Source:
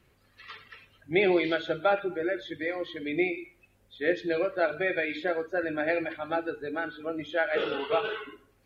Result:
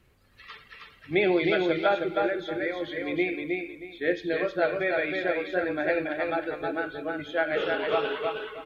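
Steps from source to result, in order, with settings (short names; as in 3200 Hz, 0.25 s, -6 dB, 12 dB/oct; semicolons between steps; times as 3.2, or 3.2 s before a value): low shelf 69 Hz +6.5 dB; on a send: feedback echo 0.315 s, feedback 25%, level -3.5 dB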